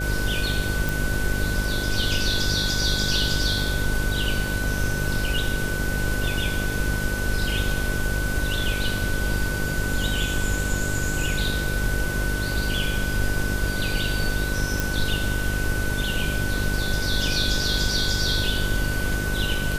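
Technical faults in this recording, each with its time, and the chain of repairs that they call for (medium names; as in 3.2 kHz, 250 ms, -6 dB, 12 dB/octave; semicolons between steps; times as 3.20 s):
buzz 50 Hz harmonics 12 -28 dBFS
whine 1.5 kHz -29 dBFS
0.89 s: pop
14.80 s: pop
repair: de-click; band-stop 1.5 kHz, Q 30; de-hum 50 Hz, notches 12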